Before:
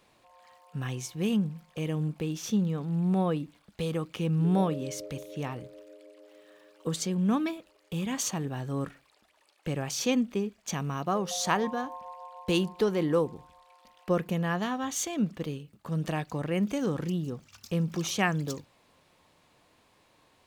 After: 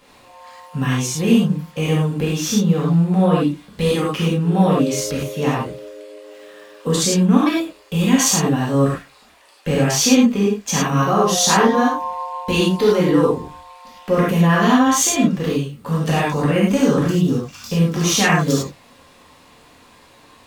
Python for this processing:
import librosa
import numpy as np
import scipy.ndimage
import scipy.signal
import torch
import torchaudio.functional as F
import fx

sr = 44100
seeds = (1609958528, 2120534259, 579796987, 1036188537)

p1 = fx.over_compress(x, sr, threshold_db=-29.0, ratio=-0.5)
p2 = x + F.gain(torch.from_numpy(p1), -1.0).numpy()
p3 = fx.rev_gated(p2, sr, seeds[0], gate_ms=130, shape='flat', drr_db=-6.5)
y = F.gain(torch.from_numpy(p3), 2.0).numpy()